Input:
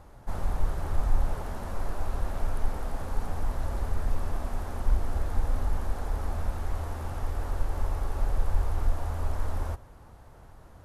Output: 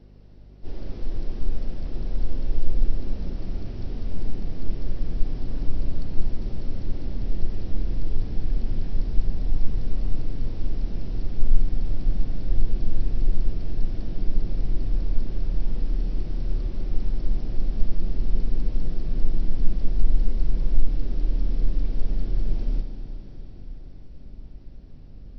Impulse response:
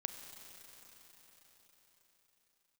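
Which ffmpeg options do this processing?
-filter_complex "[0:a]asetrate=18846,aresample=44100,asubboost=boost=3:cutoff=240[s0];[1:a]atrim=start_sample=2205[s1];[s0][s1]afir=irnorm=-1:irlink=0,aeval=exprs='val(0)+0.00355*(sin(2*PI*50*n/s)+sin(2*PI*2*50*n/s)/2+sin(2*PI*3*50*n/s)/3+sin(2*PI*4*50*n/s)/4+sin(2*PI*5*50*n/s)/5)':c=same"

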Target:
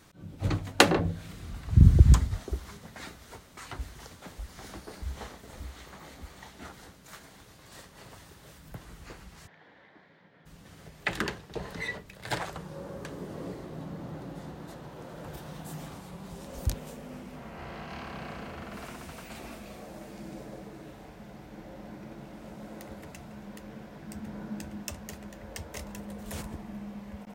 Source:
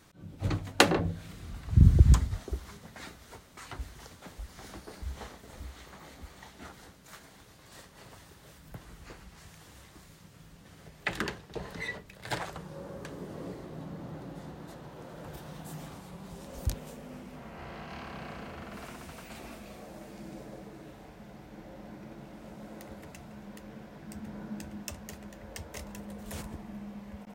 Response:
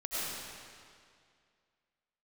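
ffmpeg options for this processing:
-filter_complex "[0:a]asplit=3[s0][s1][s2];[s0]afade=t=out:st=9.46:d=0.02[s3];[s1]highpass=280,equalizer=f=350:t=q:w=4:g=-4,equalizer=f=1200:t=q:w=4:g=-8,equalizer=f=1800:t=q:w=4:g=4,equalizer=f=2700:t=q:w=4:g=-10,lowpass=f=3000:w=0.5412,lowpass=f=3000:w=1.3066,afade=t=in:st=9.46:d=0.02,afade=t=out:st=10.45:d=0.02[s4];[s2]afade=t=in:st=10.45:d=0.02[s5];[s3][s4][s5]amix=inputs=3:normalize=0,volume=1.26"

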